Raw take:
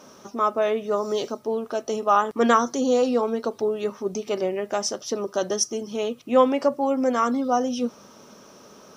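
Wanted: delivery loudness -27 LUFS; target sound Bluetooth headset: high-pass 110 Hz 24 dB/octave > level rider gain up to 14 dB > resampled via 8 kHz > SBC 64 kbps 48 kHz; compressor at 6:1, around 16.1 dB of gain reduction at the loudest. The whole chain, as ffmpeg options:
-af "acompressor=threshold=0.0316:ratio=6,highpass=f=110:w=0.5412,highpass=f=110:w=1.3066,dynaudnorm=m=5.01,aresample=8000,aresample=44100,volume=2.37" -ar 48000 -c:a sbc -b:a 64k

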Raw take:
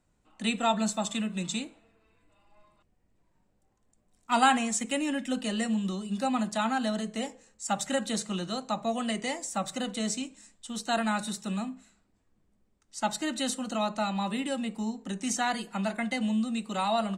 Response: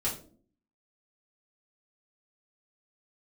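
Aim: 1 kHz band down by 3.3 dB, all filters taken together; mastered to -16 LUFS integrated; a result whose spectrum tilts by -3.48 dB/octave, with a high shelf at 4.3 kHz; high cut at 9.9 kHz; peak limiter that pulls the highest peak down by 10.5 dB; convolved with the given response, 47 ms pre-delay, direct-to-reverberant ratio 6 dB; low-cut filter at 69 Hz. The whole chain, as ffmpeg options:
-filter_complex "[0:a]highpass=69,lowpass=9900,equalizer=f=1000:t=o:g=-5,highshelf=f=4300:g=6.5,alimiter=limit=0.0794:level=0:latency=1,asplit=2[s0][s1];[1:a]atrim=start_sample=2205,adelay=47[s2];[s1][s2]afir=irnorm=-1:irlink=0,volume=0.266[s3];[s0][s3]amix=inputs=2:normalize=0,volume=5.31"

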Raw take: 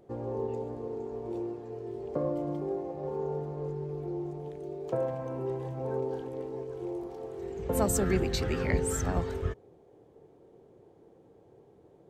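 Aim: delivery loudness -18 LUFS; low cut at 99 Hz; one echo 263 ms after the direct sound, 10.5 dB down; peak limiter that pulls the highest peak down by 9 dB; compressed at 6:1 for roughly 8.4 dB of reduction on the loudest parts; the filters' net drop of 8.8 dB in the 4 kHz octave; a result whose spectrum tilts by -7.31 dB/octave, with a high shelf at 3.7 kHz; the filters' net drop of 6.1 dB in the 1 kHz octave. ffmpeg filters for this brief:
-af "highpass=99,equalizer=f=1000:t=o:g=-8,highshelf=f=3700:g=-5.5,equalizer=f=4000:t=o:g=-6.5,acompressor=threshold=0.0224:ratio=6,alimiter=level_in=2.24:limit=0.0631:level=0:latency=1,volume=0.447,aecho=1:1:263:0.299,volume=11.9"

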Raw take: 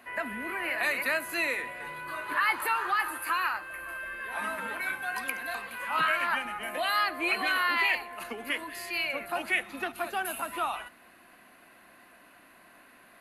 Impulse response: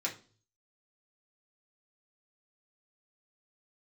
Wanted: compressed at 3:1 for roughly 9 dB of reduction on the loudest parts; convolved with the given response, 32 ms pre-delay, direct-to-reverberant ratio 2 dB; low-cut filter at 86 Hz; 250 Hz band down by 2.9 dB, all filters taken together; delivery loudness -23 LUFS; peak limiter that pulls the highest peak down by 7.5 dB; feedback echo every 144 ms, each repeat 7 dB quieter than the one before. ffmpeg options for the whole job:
-filter_complex "[0:a]highpass=86,equalizer=f=250:t=o:g=-4,acompressor=threshold=0.0178:ratio=3,alimiter=level_in=1.58:limit=0.0631:level=0:latency=1,volume=0.631,aecho=1:1:144|288|432|576|720:0.447|0.201|0.0905|0.0407|0.0183,asplit=2[s0][s1];[1:a]atrim=start_sample=2205,adelay=32[s2];[s1][s2]afir=irnorm=-1:irlink=0,volume=0.531[s3];[s0][s3]amix=inputs=2:normalize=0,volume=3.76"

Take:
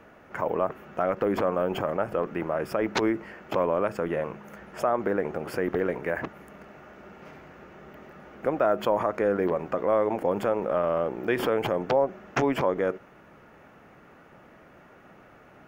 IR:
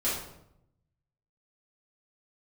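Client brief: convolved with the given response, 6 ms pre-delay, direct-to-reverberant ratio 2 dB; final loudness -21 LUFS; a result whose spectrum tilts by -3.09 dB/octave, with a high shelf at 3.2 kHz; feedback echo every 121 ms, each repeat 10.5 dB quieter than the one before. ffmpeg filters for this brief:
-filter_complex "[0:a]highshelf=f=3200:g=-3,aecho=1:1:121|242|363:0.299|0.0896|0.0269,asplit=2[s0][s1];[1:a]atrim=start_sample=2205,adelay=6[s2];[s1][s2]afir=irnorm=-1:irlink=0,volume=0.299[s3];[s0][s3]amix=inputs=2:normalize=0,volume=1.5"

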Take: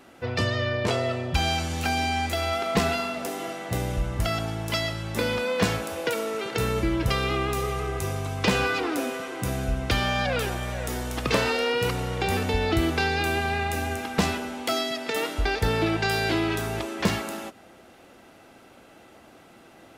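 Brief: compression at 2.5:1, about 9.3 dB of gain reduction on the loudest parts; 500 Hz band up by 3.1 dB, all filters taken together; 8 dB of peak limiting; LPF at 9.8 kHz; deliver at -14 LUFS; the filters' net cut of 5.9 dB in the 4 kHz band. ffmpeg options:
-af "lowpass=9800,equalizer=f=500:t=o:g=4,equalizer=f=4000:t=o:g=-8,acompressor=threshold=0.0282:ratio=2.5,volume=9.44,alimiter=limit=0.596:level=0:latency=1"

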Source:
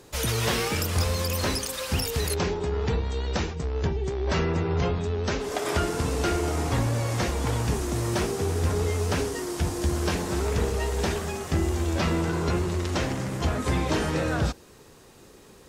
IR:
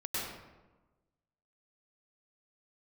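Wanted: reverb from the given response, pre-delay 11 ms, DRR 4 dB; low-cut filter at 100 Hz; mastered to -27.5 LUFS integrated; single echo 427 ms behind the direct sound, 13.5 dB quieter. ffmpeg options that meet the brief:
-filter_complex "[0:a]highpass=100,aecho=1:1:427:0.211,asplit=2[s0][s1];[1:a]atrim=start_sample=2205,adelay=11[s2];[s1][s2]afir=irnorm=-1:irlink=0,volume=0.376[s3];[s0][s3]amix=inputs=2:normalize=0,volume=0.841"

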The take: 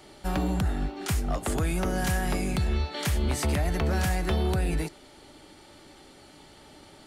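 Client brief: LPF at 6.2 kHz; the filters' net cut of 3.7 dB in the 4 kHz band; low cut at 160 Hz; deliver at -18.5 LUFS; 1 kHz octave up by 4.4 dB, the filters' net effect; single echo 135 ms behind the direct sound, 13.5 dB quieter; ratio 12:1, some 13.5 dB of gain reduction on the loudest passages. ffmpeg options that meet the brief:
-af "highpass=160,lowpass=6200,equalizer=f=1000:t=o:g=6.5,equalizer=f=4000:t=o:g=-4.5,acompressor=threshold=0.0112:ratio=12,aecho=1:1:135:0.211,volume=18.8"

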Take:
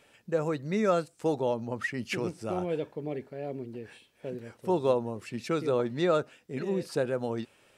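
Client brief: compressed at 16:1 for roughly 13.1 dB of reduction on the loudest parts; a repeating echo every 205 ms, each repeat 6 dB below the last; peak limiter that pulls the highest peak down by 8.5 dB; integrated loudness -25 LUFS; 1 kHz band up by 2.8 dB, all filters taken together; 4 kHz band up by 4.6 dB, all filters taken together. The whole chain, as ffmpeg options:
-af "equalizer=f=1000:t=o:g=3.5,equalizer=f=4000:t=o:g=5.5,acompressor=threshold=0.0251:ratio=16,alimiter=level_in=2:limit=0.0631:level=0:latency=1,volume=0.501,aecho=1:1:205|410|615|820|1025|1230:0.501|0.251|0.125|0.0626|0.0313|0.0157,volume=5.31"

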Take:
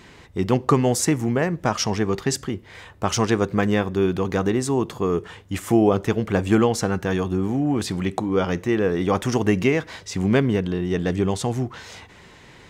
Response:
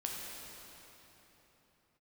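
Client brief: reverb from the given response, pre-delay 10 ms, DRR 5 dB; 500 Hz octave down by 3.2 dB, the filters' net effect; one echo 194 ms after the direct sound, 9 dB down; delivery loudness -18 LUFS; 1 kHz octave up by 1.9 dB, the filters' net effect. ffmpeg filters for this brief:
-filter_complex "[0:a]equalizer=f=500:t=o:g=-5,equalizer=f=1000:t=o:g=4,aecho=1:1:194:0.355,asplit=2[s0][s1];[1:a]atrim=start_sample=2205,adelay=10[s2];[s1][s2]afir=irnorm=-1:irlink=0,volume=0.447[s3];[s0][s3]amix=inputs=2:normalize=0,volume=1.5"

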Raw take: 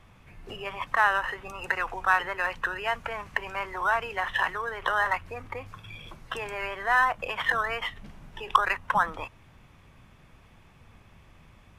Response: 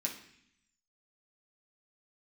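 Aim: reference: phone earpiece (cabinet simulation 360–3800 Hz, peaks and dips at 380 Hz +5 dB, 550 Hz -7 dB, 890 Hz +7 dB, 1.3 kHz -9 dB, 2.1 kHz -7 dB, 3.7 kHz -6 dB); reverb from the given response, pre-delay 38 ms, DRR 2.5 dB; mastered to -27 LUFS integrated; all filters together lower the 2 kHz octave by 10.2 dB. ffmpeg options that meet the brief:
-filter_complex "[0:a]equalizer=f=2000:t=o:g=-8,asplit=2[s0][s1];[1:a]atrim=start_sample=2205,adelay=38[s2];[s1][s2]afir=irnorm=-1:irlink=0,volume=0.631[s3];[s0][s3]amix=inputs=2:normalize=0,highpass=360,equalizer=f=380:t=q:w=4:g=5,equalizer=f=550:t=q:w=4:g=-7,equalizer=f=890:t=q:w=4:g=7,equalizer=f=1300:t=q:w=4:g=-9,equalizer=f=2100:t=q:w=4:g=-7,equalizer=f=3700:t=q:w=4:g=-6,lowpass=f=3800:w=0.5412,lowpass=f=3800:w=1.3066,volume=1.41"

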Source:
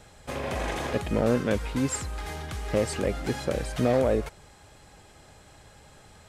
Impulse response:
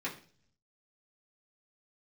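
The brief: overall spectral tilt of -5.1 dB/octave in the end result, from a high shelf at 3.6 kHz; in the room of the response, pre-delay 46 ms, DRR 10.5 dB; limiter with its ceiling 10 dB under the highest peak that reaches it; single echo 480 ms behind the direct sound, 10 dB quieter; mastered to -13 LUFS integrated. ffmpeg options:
-filter_complex "[0:a]highshelf=f=3600:g=-3,alimiter=level_in=1.12:limit=0.0631:level=0:latency=1,volume=0.891,aecho=1:1:480:0.316,asplit=2[s0][s1];[1:a]atrim=start_sample=2205,adelay=46[s2];[s1][s2]afir=irnorm=-1:irlink=0,volume=0.188[s3];[s0][s3]amix=inputs=2:normalize=0,volume=11.2"

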